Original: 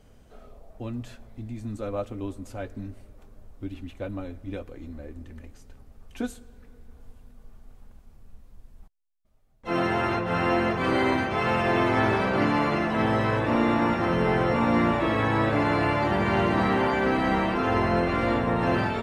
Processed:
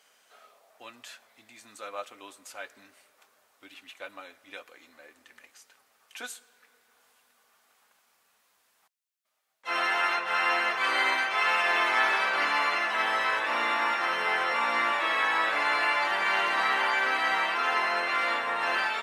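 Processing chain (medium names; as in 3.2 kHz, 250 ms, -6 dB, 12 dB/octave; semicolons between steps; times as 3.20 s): high-pass 1.3 kHz 12 dB/octave; trim +5.5 dB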